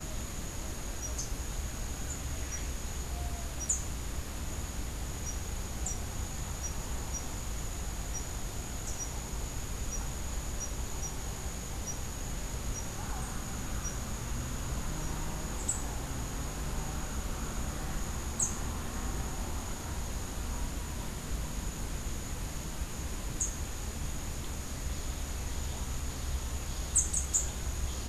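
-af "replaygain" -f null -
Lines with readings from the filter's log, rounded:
track_gain = +24.3 dB
track_peak = 0.151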